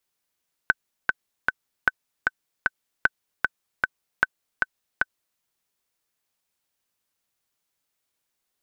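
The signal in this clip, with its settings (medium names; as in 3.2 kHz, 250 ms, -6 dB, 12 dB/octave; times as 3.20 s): metronome 153 bpm, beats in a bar 3, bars 4, 1.52 kHz, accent 3 dB -4 dBFS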